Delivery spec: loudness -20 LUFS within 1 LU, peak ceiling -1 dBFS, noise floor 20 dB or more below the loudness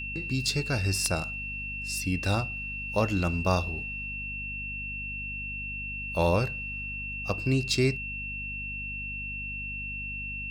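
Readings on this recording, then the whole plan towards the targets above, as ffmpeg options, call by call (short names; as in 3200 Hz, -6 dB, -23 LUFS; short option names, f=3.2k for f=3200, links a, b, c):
hum 50 Hz; harmonics up to 250 Hz; hum level -39 dBFS; steady tone 2700 Hz; tone level -34 dBFS; loudness -30.0 LUFS; peak -12.0 dBFS; loudness target -20.0 LUFS
-> -af "bandreject=f=50:t=h:w=4,bandreject=f=100:t=h:w=4,bandreject=f=150:t=h:w=4,bandreject=f=200:t=h:w=4,bandreject=f=250:t=h:w=4"
-af "bandreject=f=2.7k:w=30"
-af "volume=10dB"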